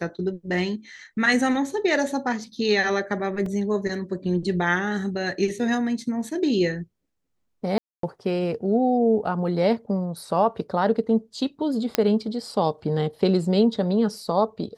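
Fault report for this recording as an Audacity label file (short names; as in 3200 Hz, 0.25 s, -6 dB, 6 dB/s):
3.460000	3.460000	gap 2.7 ms
7.780000	8.030000	gap 0.253 s
11.950000	11.950000	pop -5 dBFS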